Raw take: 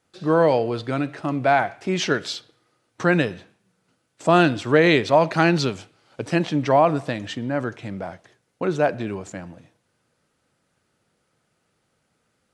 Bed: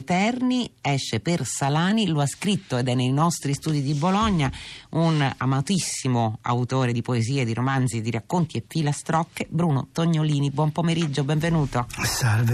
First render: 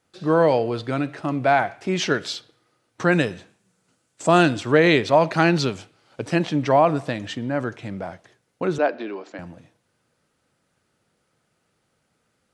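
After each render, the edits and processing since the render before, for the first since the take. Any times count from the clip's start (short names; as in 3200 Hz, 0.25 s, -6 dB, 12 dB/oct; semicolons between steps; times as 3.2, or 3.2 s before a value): 3.11–4.6 bell 7600 Hz +8 dB; 8.78–9.39 elliptic band-pass 280–4800 Hz, stop band 50 dB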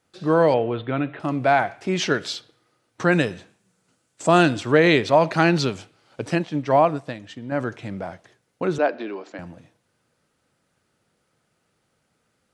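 0.54–1.2 steep low-pass 3700 Hz 72 dB/oct; 6.35–7.52 upward expander, over -35 dBFS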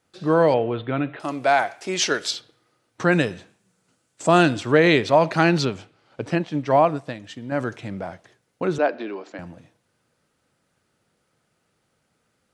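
1.16–2.31 tone controls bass -12 dB, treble +9 dB; 5.65–6.46 high shelf 5700 Hz -11 dB; 7.24–7.81 high shelf 4600 Hz +5.5 dB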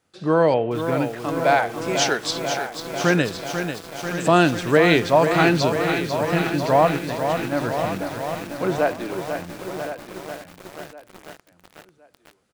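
feedback echo 1.065 s, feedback 29%, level -12 dB; lo-fi delay 0.493 s, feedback 80%, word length 6-bit, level -7.5 dB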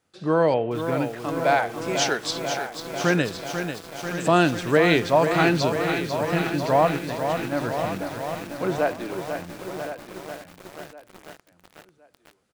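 gain -2.5 dB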